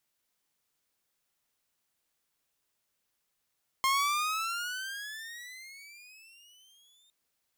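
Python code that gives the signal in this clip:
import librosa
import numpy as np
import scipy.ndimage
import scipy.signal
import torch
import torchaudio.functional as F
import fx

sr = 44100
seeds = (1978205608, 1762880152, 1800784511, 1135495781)

y = fx.riser_tone(sr, length_s=3.26, level_db=-21, wave='saw', hz=1060.0, rise_st=21.5, swell_db=-39)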